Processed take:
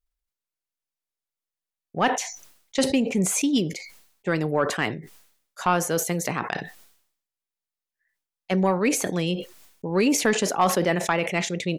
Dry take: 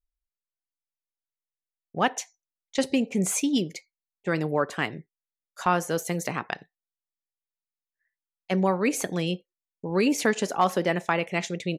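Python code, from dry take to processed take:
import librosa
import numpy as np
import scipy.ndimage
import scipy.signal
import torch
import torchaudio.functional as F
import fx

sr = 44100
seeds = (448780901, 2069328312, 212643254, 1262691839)

p1 = fx.fold_sine(x, sr, drive_db=3, ceiling_db=-8.5)
p2 = x + (p1 * 10.0 ** (-5.5 / 20.0))
p3 = fx.sustainer(p2, sr, db_per_s=86.0)
y = p3 * 10.0 ** (-4.5 / 20.0)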